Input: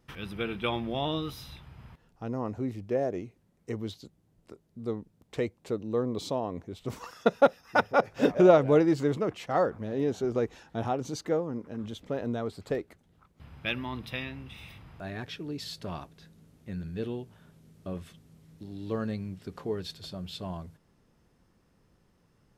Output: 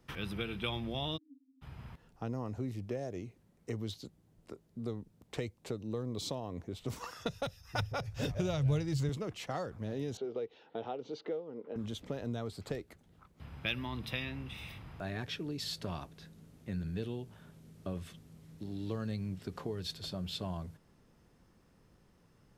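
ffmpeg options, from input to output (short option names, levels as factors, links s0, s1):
-filter_complex "[0:a]asplit=3[s0][s1][s2];[s0]afade=t=out:st=1.16:d=0.02[s3];[s1]asuperpass=centerf=270:order=8:qfactor=7.8,afade=t=in:st=1.16:d=0.02,afade=t=out:st=1.61:d=0.02[s4];[s2]afade=t=in:st=1.61:d=0.02[s5];[s3][s4][s5]amix=inputs=3:normalize=0,asettb=1/sr,asplit=3[s6][s7][s8];[s6]atrim=end=7.184[s9];[s7]atrim=start=7.18:end=9.09,asetpts=PTS-STARTPTS,afade=t=in:d=0.004:c=qsin,afade=t=out:st=1.906:d=0.004:c=qsin,lowshelf=f=150:t=q:w=1.5:g=12[s10];[s8]atrim=start=9.086[s11];[s9][s10]acrossfade=d=0.004:c1=hsin:c2=qsin[s12];[s12][s11]acrossfade=d=0.004:c1=qsin:c2=hsin,asettb=1/sr,asplit=3[s13][s14][s15];[s13]atrim=end=10.174[s16];[s14]atrim=start=10.17:end=11.76,asetpts=PTS-STARTPTS,afade=t=in:d=0.004:c=qsin,afade=t=out:st=1.586:d=0.004:c=qsin,highpass=330,equalizer=f=450:t=q:w=4:g=9,equalizer=f=1100:t=q:w=4:g=-5,equalizer=f=1700:t=q:w=4:g=-7,equalizer=f=2400:t=q:w=4:g=-4,lowpass=f=3400:w=0.5412,lowpass=f=3400:w=1.3066[s17];[s15]atrim=start=11.756[s18];[s16][s17]acrossfade=d=0.004:c1=hsin:c2=qsin[s19];[s19][s18]acrossfade=d=0.004:c1=qsin:c2=hsin,acrossover=split=130|3000[s20][s21][s22];[s21]acompressor=threshold=0.0126:ratio=6[s23];[s20][s23][s22]amix=inputs=3:normalize=0,volume=1.12"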